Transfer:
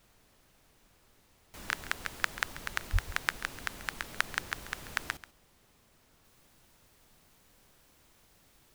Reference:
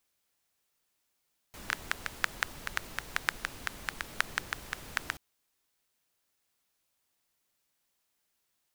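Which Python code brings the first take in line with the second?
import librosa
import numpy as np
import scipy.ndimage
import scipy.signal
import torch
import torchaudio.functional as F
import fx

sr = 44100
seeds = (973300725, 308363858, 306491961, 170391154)

y = fx.highpass(x, sr, hz=140.0, slope=24, at=(2.92, 3.04), fade=0.02)
y = fx.noise_reduce(y, sr, print_start_s=5.59, print_end_s=6.09, reduce_db=13.0)
y = fx.fix_echo_inverse(y, sr, delay_ms=137, level_db=-16.0)
y = fx.fix_level(y, sr, at_s=6.24, step_db=-10.0)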